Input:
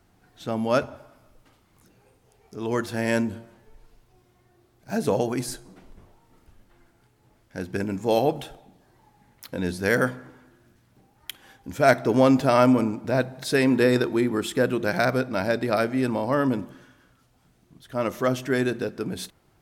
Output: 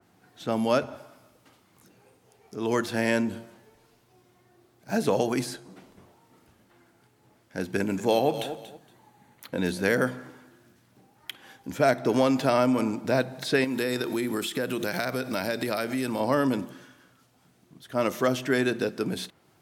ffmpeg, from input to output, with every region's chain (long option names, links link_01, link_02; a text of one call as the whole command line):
ffmpeg -i in.wav -filter_complex "[0:a]asettb=1/sr,asplit=3[link_01][link_02][link_03];[link_01]atrim=end=7.684[link_04];[link_02]atrim=start=7.68:end=9.93,asetpts=PTS-STARTPTS,afade=type=in:duration=0.004:curve=qsin,afade=type=out:start_time=2.246:duration=0.004:curve=qsin,bandreject=frequency=5200:width=9.5,aecho=1:1:233|466:0.188|0.0433,atrim=end_sample=99225[link_05];[link_03]atrim=start=9.926[link_06];[link_04][link_05]acrossfade=duration=0.004:curve1=hsin:curve2=qsin[link_07];[link_07][link_06]acrossfade=duration=0.004:curve1=qsin:curve2=hsin,asettb=1/sr,asplit=3[link_08][link_09][link_10];[link_08]atrim=end=13.644[link_11];[link_09]atrim=start=13.64:end=16.2,asetpts=PTS-STARTPTS,afade=type=in:duration=0.004:curve=qsin,afade=type=out:start_time=2.556:duration=0.004:curve=qsin,aemphasis=mode=production:type=75kf,acompressor=threshold=-26dB:ratio=5:attack=3.2:release=140:knee=1:detection=peak[link_12];[link_10]atrim=start=16.196[link_13];[link_11][link_12]acrossfade=duration=0.004:curve1=hsin:curve2=qsin[link_14];[link_14][link_13]acrossfade=duration=0.004:curve1=qsin:curve2=hsin,highpass=130,acrossover=split=670|3700[link_15][link_16][link_17];[link_15]acompressor=threshold=-23dB:ratio=4[link_18];[link_16]acompressor=threshold=-28dB:ratio=4[link_19];[link_17]acompressor=threshold=-49dB:ratio=4[link_20];[link_18][link_19][link_20]amix=inputs=3:normalize=0,adynamicequalizer=threshold=0.00708:dfrequency=2600:dqfactor=0.7:tfrequency=2600:tqfactor=0.7:attack=5:release=100:ratio=0.375:range=3:mode=boostabove:tftype=highshelf,volume=1.5dB" out.wav